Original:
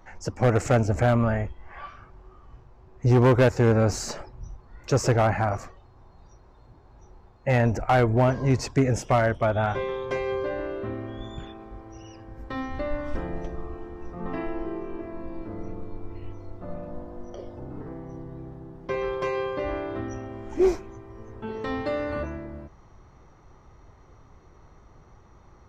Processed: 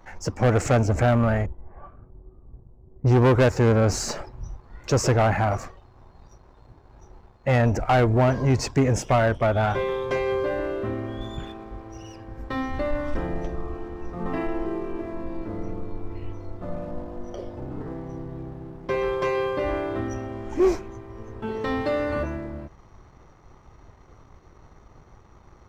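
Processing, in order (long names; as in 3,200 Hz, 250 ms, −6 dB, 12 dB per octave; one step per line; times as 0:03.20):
leveller curve on the samples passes 1
0:01.46–0:03.44: low-pass that shuts in the quiet parts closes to 320 Hz, open at −16 dBFS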